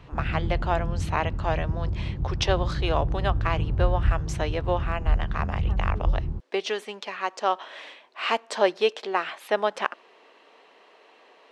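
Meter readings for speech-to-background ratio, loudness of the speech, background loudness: 0.0 dB, −29.0 LKFS, −29.0 LKFS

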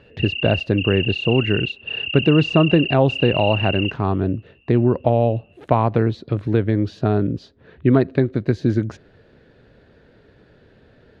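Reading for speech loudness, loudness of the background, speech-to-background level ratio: −19.5 LKFS, −25.0 LKFS, 5.5 dB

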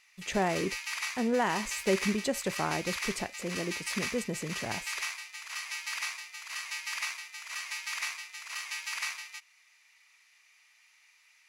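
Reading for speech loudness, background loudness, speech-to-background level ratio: −33.0 LKFS, −36.0 LKFS, 3.0 dB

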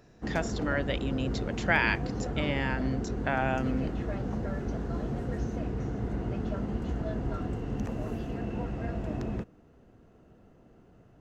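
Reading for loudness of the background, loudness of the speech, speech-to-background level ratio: −34.0 LKFS, −31.5 LKFS, 2.5 dB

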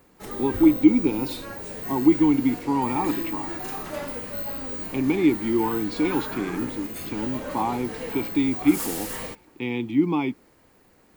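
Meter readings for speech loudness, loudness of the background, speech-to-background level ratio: −24.0 LKFS, −31.5 LKFS, 7.5 dB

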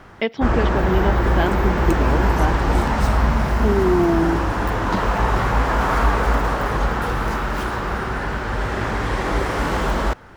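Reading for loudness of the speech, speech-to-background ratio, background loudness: −23.5 LKFS, −2.5 dB, −21.0 LKFS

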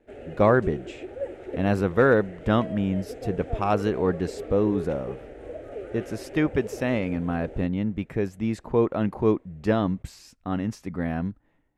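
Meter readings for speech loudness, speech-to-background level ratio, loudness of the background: −26.0 LKFS, 12.0 dB, −38.0 LKFS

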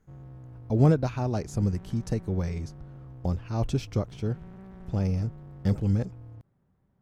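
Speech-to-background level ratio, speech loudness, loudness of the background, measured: 17.5 dB, −29.0 LKFS, −46.5 LKFS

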